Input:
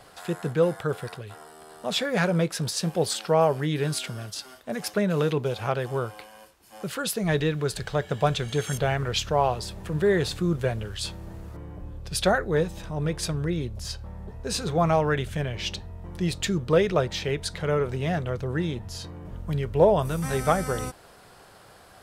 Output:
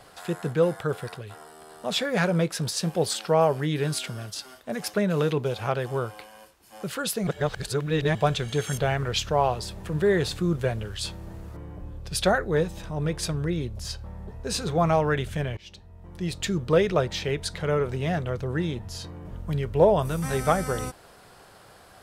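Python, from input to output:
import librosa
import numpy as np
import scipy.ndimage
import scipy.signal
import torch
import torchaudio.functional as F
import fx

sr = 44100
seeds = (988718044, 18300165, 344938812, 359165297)

y = fx.edit(x, sr, fx.reverse_span(start_s=7.27, length_s=0.88),
    fx.fade_in_from(start_s=15.57, length_s=1.06, floor_db=-22.0), tone=tone)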